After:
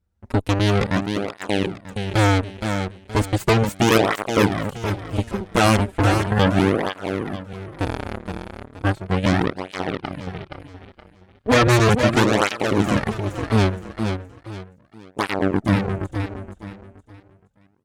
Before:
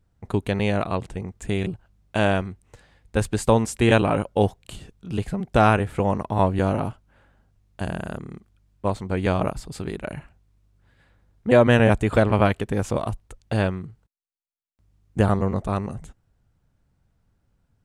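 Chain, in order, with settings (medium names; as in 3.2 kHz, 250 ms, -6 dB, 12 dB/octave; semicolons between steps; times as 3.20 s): Chebyshev shaper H 3 -21 dB, 7 -27 dB, 8 -11 dB, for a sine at -4 dBFS; 9.43–10.13 s: Savitzky-Golay filter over 15 samples; feedback delay 471 ms, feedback 32%, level -6.5 dB; cancelling through-zero flanger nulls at 0.36 Hz, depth 7.7 ms; trim +3 dB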